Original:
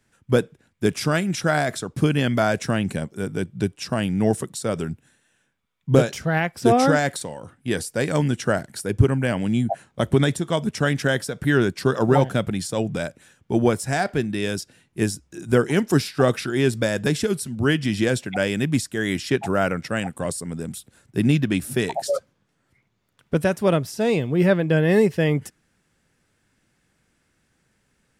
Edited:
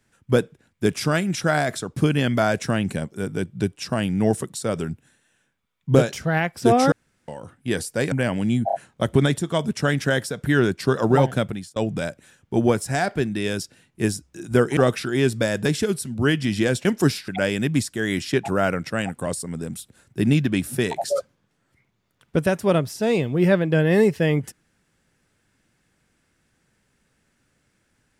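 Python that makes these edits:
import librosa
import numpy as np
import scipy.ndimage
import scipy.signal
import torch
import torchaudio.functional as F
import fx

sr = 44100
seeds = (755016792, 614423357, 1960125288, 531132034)

y = fx.edit(x, sr, fx.room_tone_fill(start_s=6.92, length_s=0.36),
    fx.cut(start_s=8.12, length_s=1.04),
    fx.stutter(start_s=9.71, slice_s=0.03, count=3),
    fx.fade_out_span(start_s=12.38, length_s=0.36),
    fx.move(start_s=15.75, length_s=0.43, to_s=18.26), tone=tone)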